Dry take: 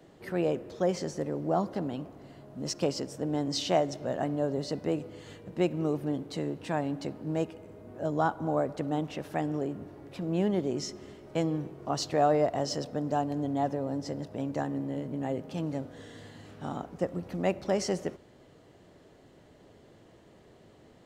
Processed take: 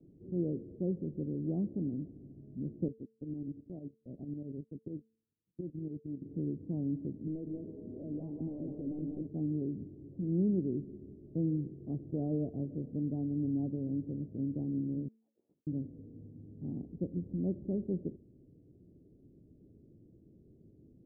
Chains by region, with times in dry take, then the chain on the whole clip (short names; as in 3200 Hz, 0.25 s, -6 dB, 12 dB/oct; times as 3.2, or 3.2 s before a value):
2.88–6.22 gate -34 dBFS, range -39 dB + tremolo saw up 11 Hz, depth 70% + compressor 2:1, threshold -36 dBFS
7.27–9.27 compressor 3:1, threshold -35 dBFS + overdrive pedal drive 19 dB, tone 1400 Hz, clips at -24.5 dBFS + echo 0.196 s -3 dB
15.08–15.67 negative-ratio compressor -38 dBFS, ratio -0.5 + inverted band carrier 2600 Hz + HPF 390 Hz
whole clip: inverse Chebyshev low-pass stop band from 2000 Hz, stop band 80 dB; de-hum 222.6 Hz, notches 2